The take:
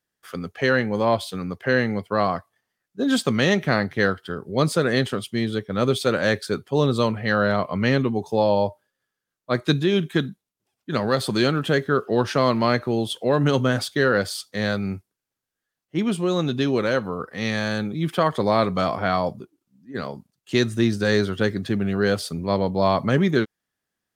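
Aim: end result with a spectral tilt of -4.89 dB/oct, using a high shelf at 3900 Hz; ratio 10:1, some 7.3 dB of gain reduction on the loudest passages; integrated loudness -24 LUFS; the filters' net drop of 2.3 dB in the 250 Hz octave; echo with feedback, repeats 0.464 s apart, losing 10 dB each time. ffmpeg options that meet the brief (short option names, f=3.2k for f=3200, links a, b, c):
-af "equalizer=f=250:t=o:g=-3,highshelf=f=3.9k:g=4.5,acompressor=threshold=-22dB:ratio=10,aecho=1:1:464|928|1392|1856:0.316|0.101|0.0324|0.0104,volume=4dB"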